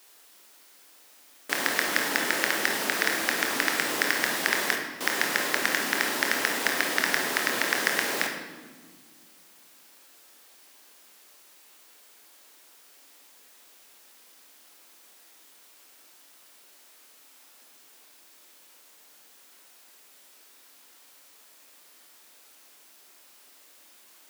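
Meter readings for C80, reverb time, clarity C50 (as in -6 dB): 7.0 dB, 1.6 s, 4.5 dB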